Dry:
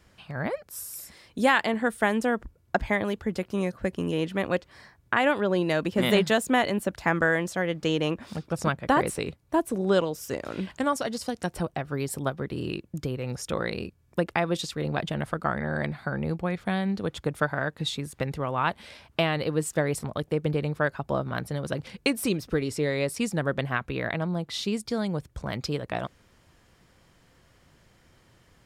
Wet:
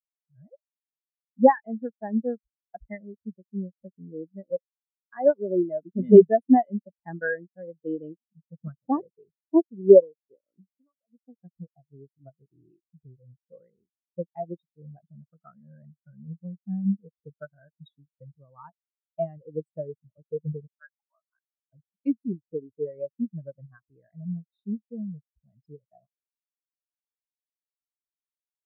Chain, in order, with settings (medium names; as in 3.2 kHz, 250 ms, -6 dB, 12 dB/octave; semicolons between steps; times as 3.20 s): 10.60–11.13 s: compression 16:1, threshold -32 dBFS, peak gain reduction 13 dB; 20.67–21.73 s: high-pass 810 Hz 24 dB/octave; spectral contrast expander 4:1; trim +7 dB